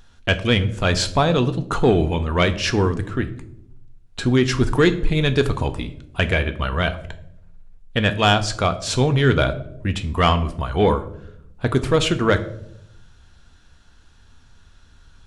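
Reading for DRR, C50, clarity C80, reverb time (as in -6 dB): 9.0 dB, 14.5 dB, 17.5 dB, 0.75 s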